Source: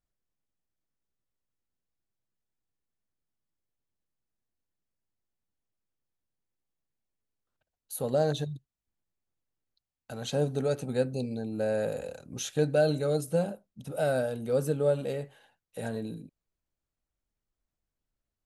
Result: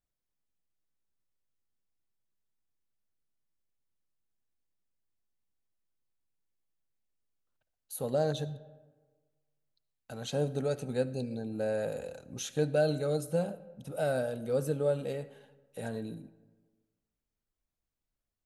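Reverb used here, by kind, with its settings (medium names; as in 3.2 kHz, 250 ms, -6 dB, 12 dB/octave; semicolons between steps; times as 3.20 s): algorithmic reverb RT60 1.4 s, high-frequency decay 0.5×, pre-delay 35 ms, DRR 17.5 dB; trim -3 dB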